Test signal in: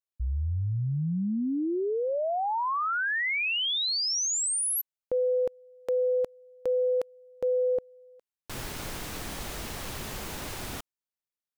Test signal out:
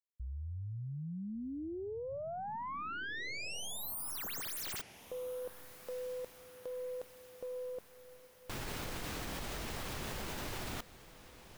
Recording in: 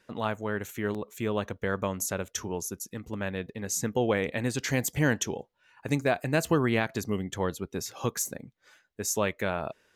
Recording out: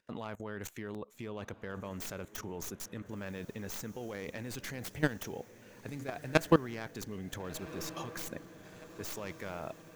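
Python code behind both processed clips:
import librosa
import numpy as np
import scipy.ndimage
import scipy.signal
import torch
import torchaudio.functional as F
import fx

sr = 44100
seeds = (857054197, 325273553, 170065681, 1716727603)

y = fx.tracing_dist(x, sr, depth_ms=0.23)
y = fx.level_steps(y, sr, step_db=22)
y = fx.echo_diffused(y, sr, ms=1419, feedback_pct=57, wet_db=-15.5)
y = F.gain(torch.from_numpy(y), 3.0).numpy()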